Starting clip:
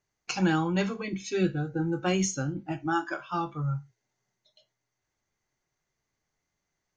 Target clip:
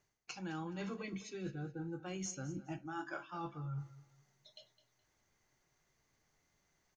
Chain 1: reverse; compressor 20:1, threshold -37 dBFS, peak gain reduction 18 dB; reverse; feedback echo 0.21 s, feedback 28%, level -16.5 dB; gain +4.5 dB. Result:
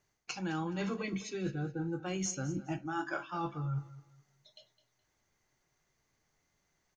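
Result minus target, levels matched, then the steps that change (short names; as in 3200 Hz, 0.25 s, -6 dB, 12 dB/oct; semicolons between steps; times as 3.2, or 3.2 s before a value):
compressor: peak gain reduction -6.5 dB
change: compressor 20:1, threshold -44 dBFS, peak gain reduction 25 dB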